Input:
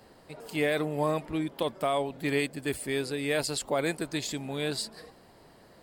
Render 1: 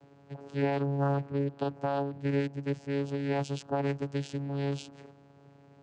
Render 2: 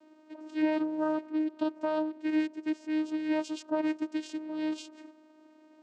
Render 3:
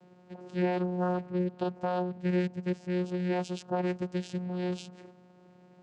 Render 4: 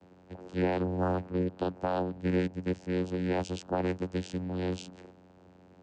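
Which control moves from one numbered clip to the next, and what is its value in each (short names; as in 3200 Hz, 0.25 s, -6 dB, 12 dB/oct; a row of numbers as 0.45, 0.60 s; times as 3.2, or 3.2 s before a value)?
vocoder, frequency: 140, 310, 180, 91 Hz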